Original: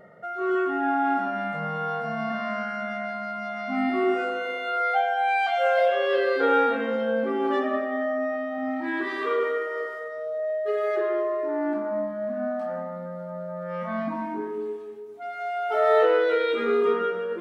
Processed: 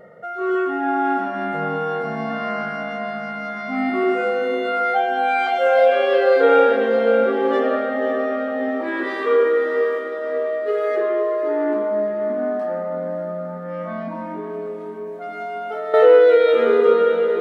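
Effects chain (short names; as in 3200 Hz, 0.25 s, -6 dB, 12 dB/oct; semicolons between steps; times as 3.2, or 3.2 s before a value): bell 490 Hz +8.5 dB 0.26 oct; 13.56–15.94 compressor 4:1, threshold -30 dBFS, peak gain reduction 13 dB; diffused feedback echo 0.579 s, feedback 54%, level -9 dB; gain +3 dB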